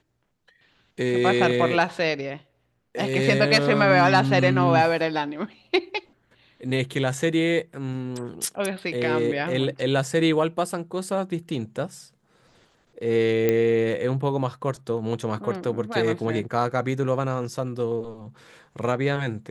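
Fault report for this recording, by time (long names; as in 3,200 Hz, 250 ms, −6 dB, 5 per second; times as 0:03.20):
0:13.49: click −9 dBFS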